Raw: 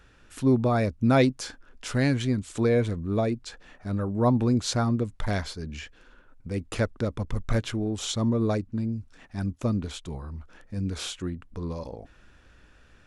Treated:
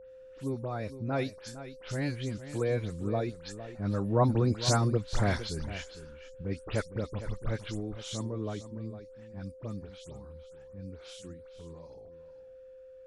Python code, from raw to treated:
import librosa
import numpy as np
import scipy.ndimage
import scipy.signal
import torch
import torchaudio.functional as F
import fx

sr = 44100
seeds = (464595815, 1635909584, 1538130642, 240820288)

p1 = fx.spec_delay(x, sr, highs='late', ms=103)
p2 = fx.doppler_pass(p1, sr, speed_mps=6, closest_m=7.1, pass_at_s=4.96)
p3 = p2 + fx.echo_single(p2, sr, ms=457, db=-13.0, dry=0)
y = p3 + 10.0 ** (-48.0 / 20.0) * np.sin(2.0 * np.pi * 520.0 * np.arange(len(p3)) / sr)